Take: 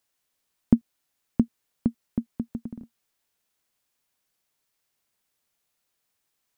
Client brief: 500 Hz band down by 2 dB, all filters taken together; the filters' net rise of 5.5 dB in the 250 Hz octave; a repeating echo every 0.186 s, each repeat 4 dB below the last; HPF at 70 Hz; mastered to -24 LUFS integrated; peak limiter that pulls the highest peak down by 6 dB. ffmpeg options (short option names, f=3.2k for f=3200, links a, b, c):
-af "highpass=70,equalizer=f=250:t=o:g=7.5,equalizer=f=500:t=o:g=-7.5,alimiter=limit=-6.5dB:level=0:latency=1,aecho=1:1:186|372|558|744|930|1116|1302|1488|1674:0.631|0.398|0.25|0.158|0.0994|0.0626|0.0394|0.0249|0.0157,volume=1.5dB"